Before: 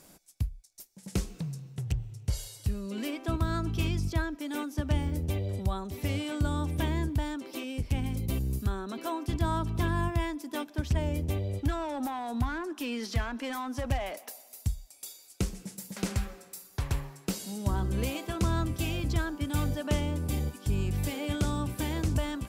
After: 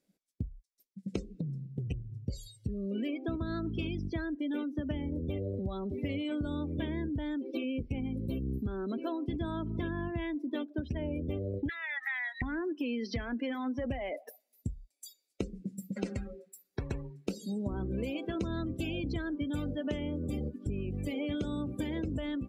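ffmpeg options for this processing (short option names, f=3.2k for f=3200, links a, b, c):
-filter_complex "[0:a]asettb=1/sr,asplit=3[a][b][c];[a]atrim=end=11.694[d];[b]atrim=start=11.69:end=12.42,asetpts=PTS-STARTPTS,afade=t=in:d=0.004:c=qsin,afade=t=out:st=0.726:d=0.004:c=qsin,highpass=f=1.9k:t=q:w=14[e];[c]atrim=start=12.416[f];[d][e]acrossfade=d=0.004:c1=hsin:c2=qsin[g];[g][f]acrossfade=d=0.004:c1=qsin:c2=hsin,afftdn=nr=30:nf=-39,equalizer=f=250:t=o:w=1:g=9,equalizer=f=500:t=o:w=1:g=9,equalizer=f=1k:t=o:w=1:g=-5,equalizer=f=2k:t=o:w=1:g=7,equalizer=f=4k:t=o:w=1:g=6,acompressor=threshold=-32dB:ratio=6"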